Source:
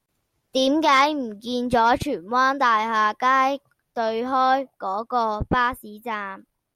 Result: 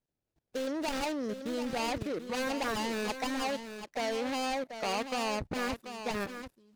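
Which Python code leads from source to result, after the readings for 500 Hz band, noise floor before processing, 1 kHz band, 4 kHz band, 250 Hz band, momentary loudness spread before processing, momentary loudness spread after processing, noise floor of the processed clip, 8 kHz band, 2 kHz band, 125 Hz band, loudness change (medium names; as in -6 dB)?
-9.0 dB, -77 dBFS, -16.5 dB, -8.0 dB, -8.5 dB, 12 LU, 5 LU, under -85 dBFS, no reading, -12.5 dB, -10.0 dB, -12.5 dB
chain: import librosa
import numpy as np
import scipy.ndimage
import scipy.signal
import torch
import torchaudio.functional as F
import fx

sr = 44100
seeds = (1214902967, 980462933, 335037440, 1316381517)

y = scipy.ndimage.median_filter(x, 41, mode='constant')
y = fx.peak_eq(y, sr, hz=5100.0, db=6.5, octaves=2.2)
y = fx.level_steps(y, sr, step_db=18)
y = fx.low_shelf(y, sr, hz=430.0, db=-6.5)
y = y + 10.0 ** (-9.5 / 20.0) * np.pad(y, (int(736 * sr / 1000.0), 0))[:len(y)]
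y = y * 10.0 ** (6.0 / 20.0)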